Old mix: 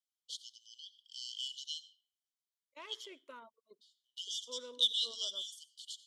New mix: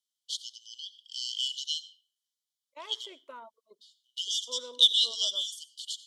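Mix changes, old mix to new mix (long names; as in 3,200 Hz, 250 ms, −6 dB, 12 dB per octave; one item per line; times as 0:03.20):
first voice +9.0 dB
master: add parametric band 780 Hz +10 dB 1.1 octaves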